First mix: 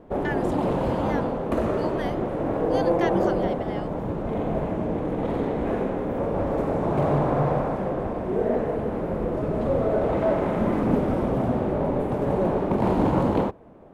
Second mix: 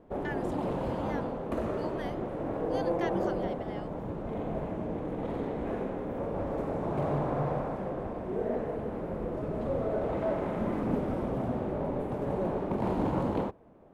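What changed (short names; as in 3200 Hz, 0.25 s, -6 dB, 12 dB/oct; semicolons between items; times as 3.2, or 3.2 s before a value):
speech -7.5 dB; background -8.0 dB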